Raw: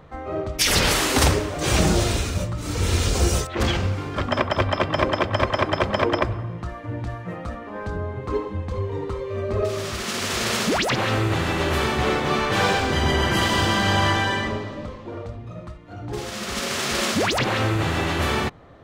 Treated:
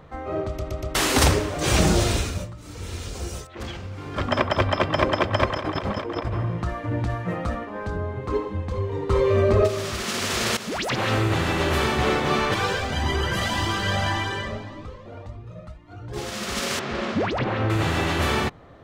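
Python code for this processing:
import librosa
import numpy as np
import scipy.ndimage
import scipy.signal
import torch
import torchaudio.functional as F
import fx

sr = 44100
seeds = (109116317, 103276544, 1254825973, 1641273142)

y = fx.over_compress(x, sr, threshold_db=-28.0, ratio=-1.0, at=(5.53, 7.64), fade=0.02)
y = fx.env_flatten(y, sr, amount_pct=70, at=(9.09, 9.66), fade=0.02)
y = fx.comb_cascade(y, sr, direction='rising', hz=1.8, at=(12.54, 16.16))
y = fx.spacing_loss(y, sr, db_at_10k=31, at=(16.79, 17.7))
y = fx.edit(y, sr, fx.stutter_over(start_s=0.47, slice_s=0.12, count=4),
    fx.fade_down_up(start_s=2.18, length_s=2.09, db=-12.0, fade_s=0.37),
    fx.fade_in_from(start_s=10.57, length_s=0.56, floor_db=-14.0), tone=tone)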